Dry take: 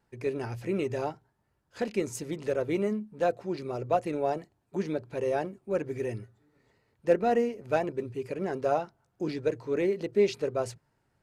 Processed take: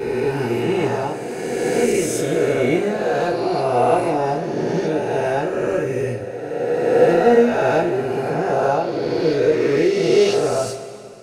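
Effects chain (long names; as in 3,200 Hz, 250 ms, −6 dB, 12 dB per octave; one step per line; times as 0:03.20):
peak hold with a rise ahead of every peak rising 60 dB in 2.66 s
coupled-rooms reverb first 0.25 s, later 2.5 s, from −19 dB, DRR −6.5 dB
level −1 dB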